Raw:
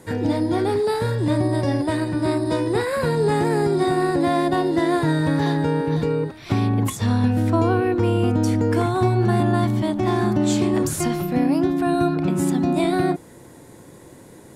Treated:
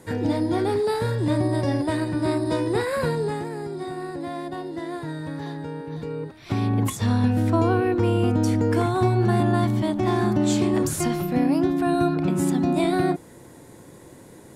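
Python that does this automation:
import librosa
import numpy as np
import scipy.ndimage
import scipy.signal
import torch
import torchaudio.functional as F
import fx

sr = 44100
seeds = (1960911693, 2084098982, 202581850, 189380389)

y = fx.gain(x, sr, db=fx.line((3.05, -2.0), (3.51, -12.0), (5.89, -12.0), (6.77, -1.5)))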